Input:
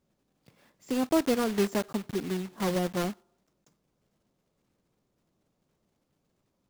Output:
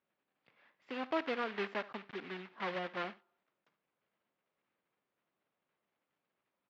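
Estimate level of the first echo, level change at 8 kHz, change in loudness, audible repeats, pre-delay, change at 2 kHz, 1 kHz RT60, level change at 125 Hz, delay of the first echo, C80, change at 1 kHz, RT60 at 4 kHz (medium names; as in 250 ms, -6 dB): -18.5 dB, under -25 dB, -10.0 dB, 1, no reverb, -1.5 dB, no reverb, -18.5 dB, 71 ms, no reverb, -5.0 dB, no reverb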